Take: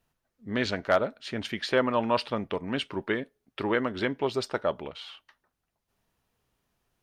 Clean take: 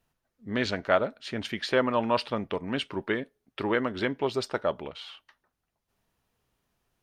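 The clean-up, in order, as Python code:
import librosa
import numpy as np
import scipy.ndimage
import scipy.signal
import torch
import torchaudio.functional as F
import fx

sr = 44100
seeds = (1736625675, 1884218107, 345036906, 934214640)

y = fx.fix_declip(x, sr, threshold_db=-11.0)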